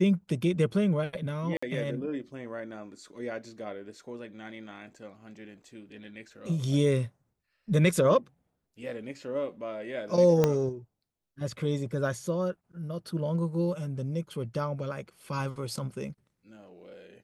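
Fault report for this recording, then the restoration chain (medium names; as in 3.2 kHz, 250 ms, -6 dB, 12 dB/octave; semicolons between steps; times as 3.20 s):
1.57–1.62 s: dropout 55 ms
10.44 s: pop -10 dBFS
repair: de-click; interpolate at 1.57 s, 55 ms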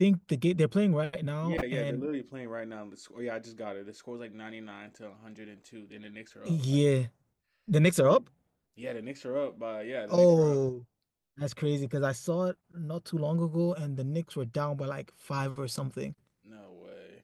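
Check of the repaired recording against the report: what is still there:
10.44 s: pop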